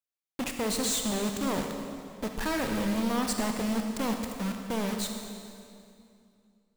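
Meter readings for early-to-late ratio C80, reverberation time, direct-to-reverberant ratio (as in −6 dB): 5.5 dB, 2.5 s, 3.5 dB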